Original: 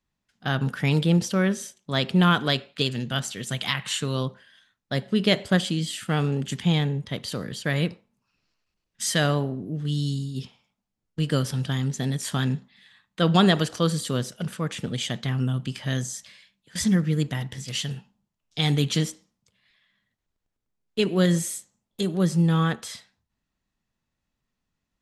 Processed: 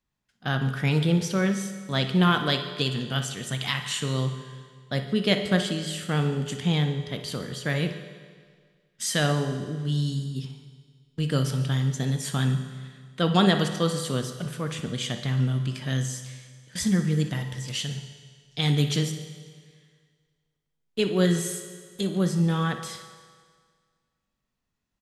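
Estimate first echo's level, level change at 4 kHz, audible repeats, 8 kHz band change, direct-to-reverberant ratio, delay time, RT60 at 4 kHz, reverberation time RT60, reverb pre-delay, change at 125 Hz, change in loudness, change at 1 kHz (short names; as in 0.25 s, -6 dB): -14.0 dB, -1.0 dB, 2, -1.5 dB, 6.5 dB, 60 ms, 1.7 s, 1.8 s, 7 ms, -0.5 dB, -1.0 dB, -1.0 dB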